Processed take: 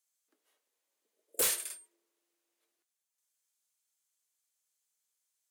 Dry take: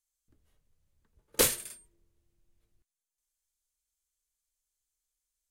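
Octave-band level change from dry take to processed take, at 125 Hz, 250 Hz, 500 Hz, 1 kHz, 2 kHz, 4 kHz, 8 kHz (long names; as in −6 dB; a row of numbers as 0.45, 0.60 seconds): below −15 dB, −12.0 dB, −8.0 dB, −6.5 dB, −5.0 dB, −4.5 dB, −2.0 dB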